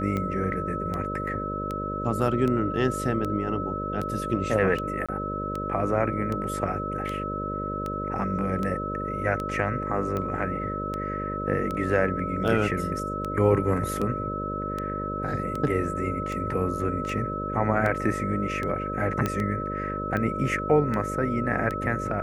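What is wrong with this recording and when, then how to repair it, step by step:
buzz 50 Hz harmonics 12 -33 dBFS
tick 78 rpm -18 dBFS
whine 1.3 kHz -31 dBFS
5.06–5.09 s: dropout 26 ms
19.26 s: pop -12 dBFS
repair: de-click; de-hum 50 Hz, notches 12; band-stop 1.3 kHz, Q 30; interpolate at 5.06 s, 26 ms

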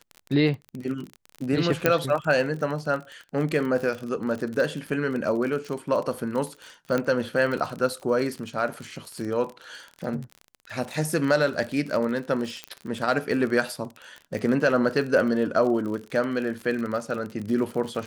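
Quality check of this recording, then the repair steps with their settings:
crackle 42 per s -30 dBFS
1.86 s: pop -5 dBFS
6.98 s: pop -13 dBFS
12.64 s: pop -17 dBFS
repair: de-click

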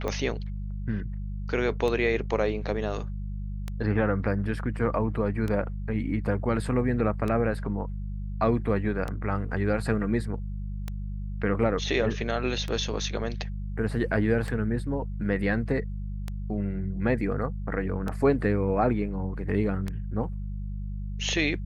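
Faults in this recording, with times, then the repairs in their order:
hum 50 Hz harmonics 4 -33 dBFS
tick 33 1/3 rpm -18 dBFS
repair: de-click; de-hum 50 Hz, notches 4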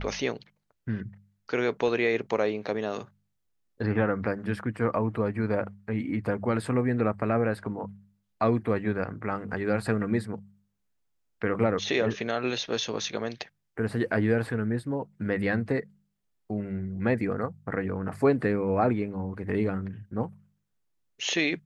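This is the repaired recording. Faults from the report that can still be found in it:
nothing left

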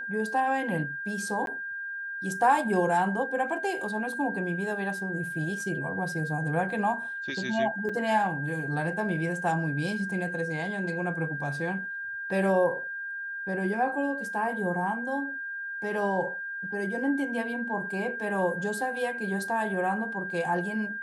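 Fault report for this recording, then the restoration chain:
whine 1.6 kHz -33 dBFS
1.46–1.47 s: dropout 12 ms
7.89–7.90 s: dropout 5.1 ms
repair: band-stop 1.6 kHz, Q 30; interpolate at 1.46 s, 12 ms; interpolate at 7.89 s, 5.1 ms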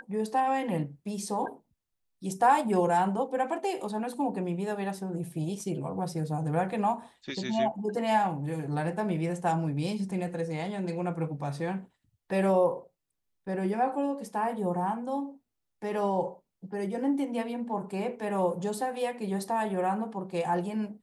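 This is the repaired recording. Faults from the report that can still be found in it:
nothing left

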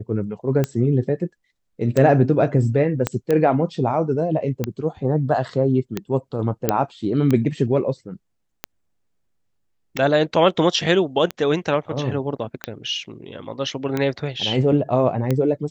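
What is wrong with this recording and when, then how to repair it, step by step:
tick 45 rpm -9 dBFS
3.07 s: pop -6 dBFS
6.69 s: pop -3 dBFS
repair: de-click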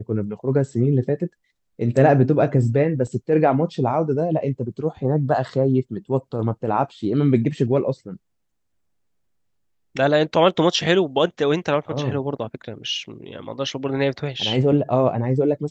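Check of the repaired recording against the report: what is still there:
3.07 s: pop

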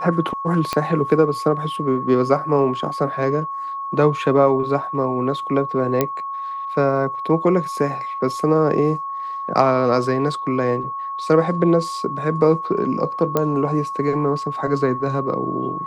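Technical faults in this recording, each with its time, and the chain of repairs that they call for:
whine 1.1 kHz -25 dBFS
0.73 s: pop -7 dBFS
6.01 s: pop -4 dBFS
13.37 s: pop -6 dBFS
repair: de-click; band-stop 1.1 kHz, Q 30

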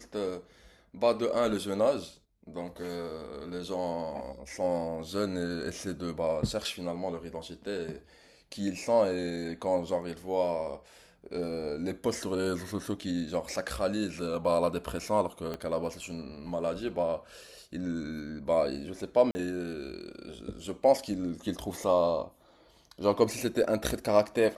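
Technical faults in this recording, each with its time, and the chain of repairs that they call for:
15.54 s: pop -22 dBFS
19.31–19.35 s: dropout 40 ms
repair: de-click; interpolate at 19.31 s, 40 ms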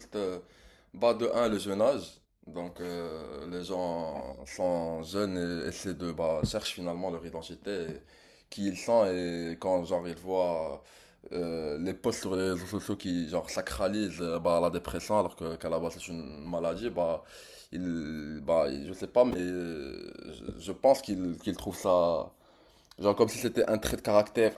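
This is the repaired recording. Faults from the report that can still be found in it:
15.54 s: pop

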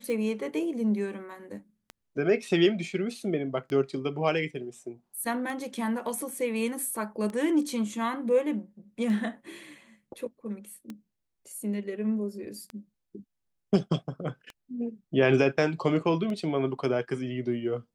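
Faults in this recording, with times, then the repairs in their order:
tick 33 1/3 rpm -24 dBFS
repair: de-click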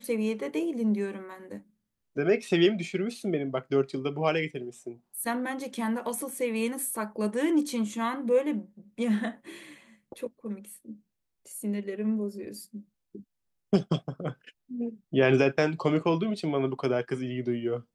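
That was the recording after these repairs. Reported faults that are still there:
nothing left

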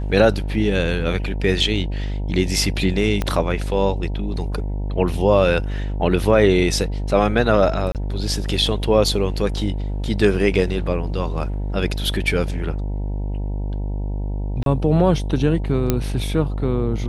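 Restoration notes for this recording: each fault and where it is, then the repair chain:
buzz 50 Hz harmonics 19 -24 dBFS
3.22 s: pop -8 dBFS
7.92–7.95 s: dropout 28 ms
14.63–14.66 s: dropout 32 ms
15.90 s: pop -4 dBFS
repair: de-click; de-hum 50 Hz, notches 19; interpolate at 7.92 s, 28 ms; interpolate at 14.63 s, 32 ms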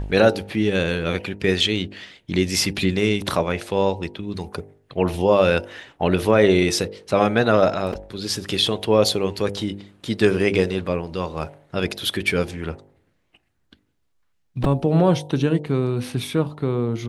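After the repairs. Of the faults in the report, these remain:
3.22 s: pop

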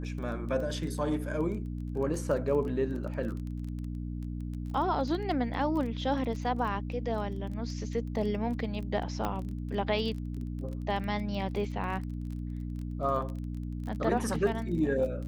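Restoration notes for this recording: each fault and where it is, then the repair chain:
crackle 21 per s -37 dBFS
hum 60 Hz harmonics 5 -36 dBFS
9.25 s: pop -18 dBFS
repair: de-click; de-hum 60 Hz, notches 5

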